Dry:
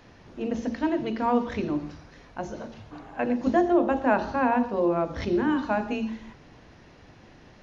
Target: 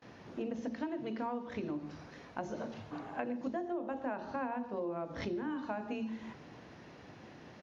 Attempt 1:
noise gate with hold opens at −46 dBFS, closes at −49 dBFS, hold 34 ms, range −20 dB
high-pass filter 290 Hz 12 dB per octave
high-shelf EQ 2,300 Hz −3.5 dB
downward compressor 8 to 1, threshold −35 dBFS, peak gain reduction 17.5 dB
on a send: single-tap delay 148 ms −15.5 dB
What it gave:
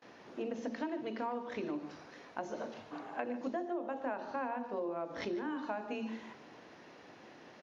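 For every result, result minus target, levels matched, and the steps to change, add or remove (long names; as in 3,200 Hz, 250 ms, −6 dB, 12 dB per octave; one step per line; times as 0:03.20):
125 Hz band −7.0 dB; echo-to-direct +9.5 dB
change: high-pass filter 120 Hz 12 dB per octave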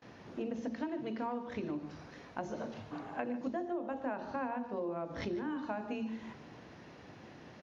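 echo-to-direct +9.5 dB
change: single-tap delay 148 ms −25 dB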